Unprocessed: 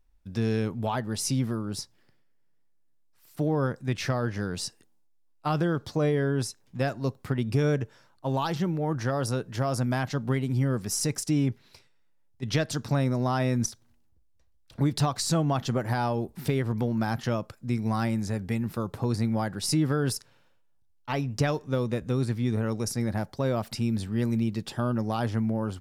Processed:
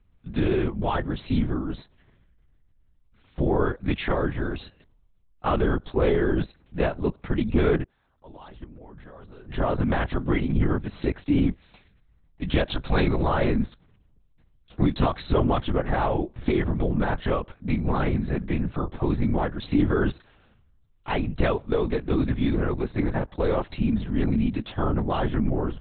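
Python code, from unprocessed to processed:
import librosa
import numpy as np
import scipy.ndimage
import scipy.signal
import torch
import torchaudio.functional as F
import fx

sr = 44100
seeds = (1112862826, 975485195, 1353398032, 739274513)

y = fx.level_steps(x, sr, step_db=24, at=(7.82, 9.42), fade=0.02)
y = fx.high_shelf(y, sr, hz=2400.0, db=11.5, at=(12.67, 13.28))
y = fx.lpc_vocoder(y, sr, seeds[0], excitation='whisper', order=8)
y = y * 10.0 ** (3.5 / 20.0)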